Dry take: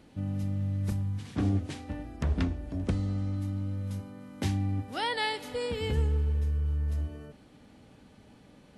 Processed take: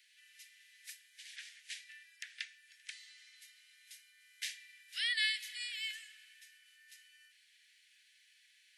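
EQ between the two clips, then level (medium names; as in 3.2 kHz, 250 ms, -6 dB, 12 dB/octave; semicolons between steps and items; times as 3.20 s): steep high-pass 1.7 kHz 72 dB/octave; +1.0 dB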